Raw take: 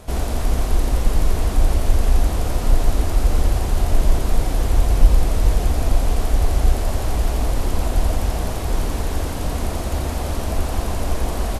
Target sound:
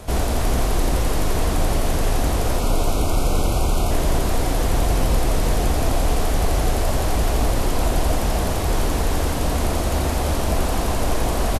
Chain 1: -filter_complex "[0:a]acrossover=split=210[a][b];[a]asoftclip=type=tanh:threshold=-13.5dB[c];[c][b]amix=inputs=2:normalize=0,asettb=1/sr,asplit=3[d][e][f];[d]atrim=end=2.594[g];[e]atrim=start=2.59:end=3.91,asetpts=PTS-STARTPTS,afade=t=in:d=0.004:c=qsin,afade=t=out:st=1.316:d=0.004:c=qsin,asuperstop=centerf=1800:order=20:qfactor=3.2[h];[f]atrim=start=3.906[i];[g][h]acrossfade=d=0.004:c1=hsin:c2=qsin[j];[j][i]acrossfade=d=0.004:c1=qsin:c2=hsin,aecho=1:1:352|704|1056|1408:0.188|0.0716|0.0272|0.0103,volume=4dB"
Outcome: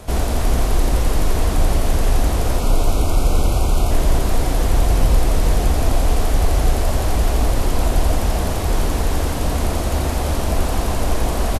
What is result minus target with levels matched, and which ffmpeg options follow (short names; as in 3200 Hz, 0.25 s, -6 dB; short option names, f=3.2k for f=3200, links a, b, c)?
soft clip: distortion -5 dB
-filter_complex "[0:a]acrossover=split=210[a][b];[a]asoftclip=type=tanh:threshold=-20dB[c];[c][b]amix=inputs=2:normalize=0,asettb=1/sr,asplit=3[d][e][f];[d]atrim=end=2.594[g];[e]atrim=start=2.59:end=3.91,asetpts=PTS-STARTPTS,afade=t=in:d=0.004:c=qsin,afade=t=out:st=1.316:d=0.004:c=qsin,asuperstop=centerf=1800:order=20:qfactor=3.2[h];[f]atrim=start=3.906[i];[g][h]acrossfade=d=0.004:c1=hsin:c2=qsin[j];[j][i]acrossfade=d=0.004:c1=qsin:c2=hsin,aecho=1:1:352|704|1056|1408:0.188|0.0716|0.0272|0.0103,volume=4dB"